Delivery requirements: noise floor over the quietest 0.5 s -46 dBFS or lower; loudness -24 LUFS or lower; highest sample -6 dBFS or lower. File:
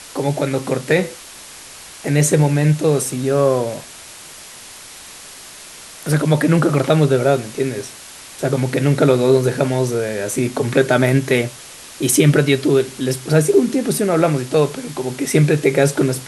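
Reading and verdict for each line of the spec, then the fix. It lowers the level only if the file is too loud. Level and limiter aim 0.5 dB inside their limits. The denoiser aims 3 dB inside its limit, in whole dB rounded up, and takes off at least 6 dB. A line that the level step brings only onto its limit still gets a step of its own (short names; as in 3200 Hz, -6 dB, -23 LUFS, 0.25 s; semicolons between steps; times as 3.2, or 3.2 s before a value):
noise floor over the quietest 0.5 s -38 dBFS: fail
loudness -17.0 LUFS: fail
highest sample -2.0 dBFS: fail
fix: denoiser 6 dB, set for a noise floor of -38 dBFS; gain -7.5 dB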